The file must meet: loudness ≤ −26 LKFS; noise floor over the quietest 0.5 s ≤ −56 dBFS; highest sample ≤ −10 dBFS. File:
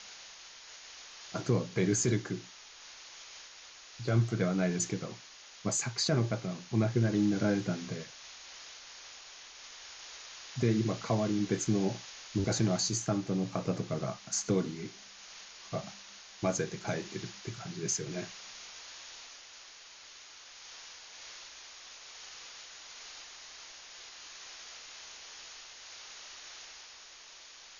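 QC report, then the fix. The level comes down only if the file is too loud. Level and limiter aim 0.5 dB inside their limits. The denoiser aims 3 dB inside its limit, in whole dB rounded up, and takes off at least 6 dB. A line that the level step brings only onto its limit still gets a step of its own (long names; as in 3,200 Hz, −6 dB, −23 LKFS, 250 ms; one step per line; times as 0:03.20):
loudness −33.0 LKFS: in spec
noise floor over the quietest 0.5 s −52 dBFS: out of spec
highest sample −16.0 dBFS: in spec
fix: broadband denoise 7 dB, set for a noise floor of −52 dBFS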